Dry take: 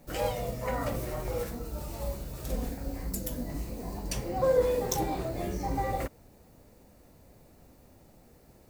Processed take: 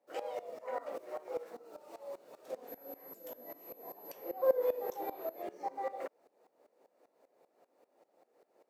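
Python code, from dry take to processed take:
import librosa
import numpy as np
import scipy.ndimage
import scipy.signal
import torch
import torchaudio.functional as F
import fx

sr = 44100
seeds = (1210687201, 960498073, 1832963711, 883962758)

y = scipy.signal.sosfilt(scipy.signal.butter(4, 460.0, 'highpass', fs=sr, output='sos'), x)
y = fx.tilt_eq(y, sr, slope=-4.0)
y = fx.dmg_tone(y, sr, hz=12000.0, level_db=-44.0, at=(2.67, 5.41), fade=0.02)
y = fx.tremolo_decay(y, sr, direction='swelling', hz=5.1, depth_db=18)
y = y * 10.0 ** (-1.5 / 20.0)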